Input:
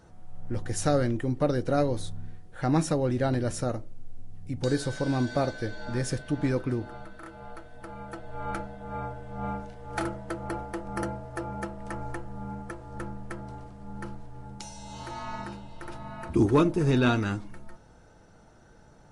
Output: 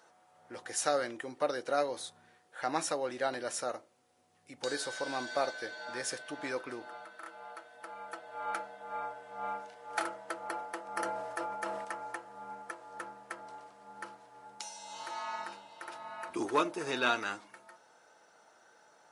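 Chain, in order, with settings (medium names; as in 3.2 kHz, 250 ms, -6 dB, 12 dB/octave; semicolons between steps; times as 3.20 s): high-pass 670 Hz 12 dB/octave; 10.86–11.85 s: decay stretcher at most 31 dB/s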